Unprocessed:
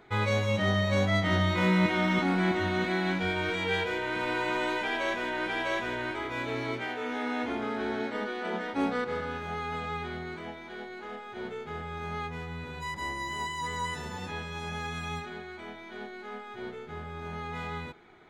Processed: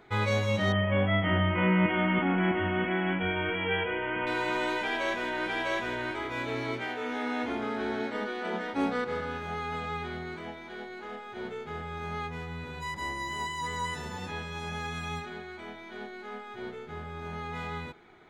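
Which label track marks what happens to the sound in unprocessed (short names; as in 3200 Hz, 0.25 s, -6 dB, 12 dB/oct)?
0.720000	4.270000	brick-wall FIR low-pass 3400 Hz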